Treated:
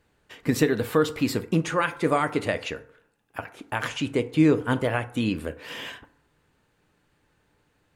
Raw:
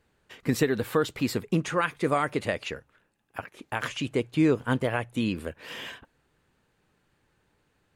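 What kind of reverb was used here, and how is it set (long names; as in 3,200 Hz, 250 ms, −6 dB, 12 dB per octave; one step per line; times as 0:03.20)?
feedback delay network reverb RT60 0.65 s, low-frequency decay 0.75×, high-frequency decay 0.45×, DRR 10.5 dB
level +2 dB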